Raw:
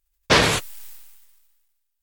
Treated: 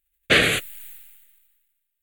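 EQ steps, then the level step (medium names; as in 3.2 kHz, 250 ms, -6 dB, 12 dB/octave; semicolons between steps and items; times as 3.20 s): bass shelf 230 Hz -10.5 dB; static phaser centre 2.3 kHz, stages 4; +3.5 dB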